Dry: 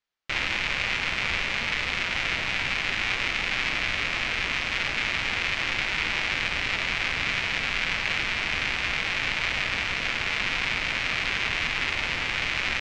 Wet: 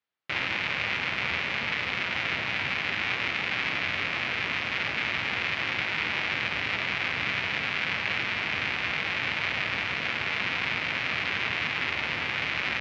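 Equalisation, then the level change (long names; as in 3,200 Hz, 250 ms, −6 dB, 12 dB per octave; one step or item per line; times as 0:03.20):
high-pass filter 86 Hz 24 dB per octave
high-frequency loss of the air 150 metres
0.0 dB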